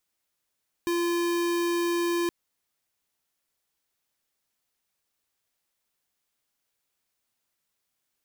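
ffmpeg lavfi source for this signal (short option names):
-f lavfi -i "aevalsrc='0.0501*(2*lt(mod(344*t,1),0.5)-1)':d=1.42:s=44100"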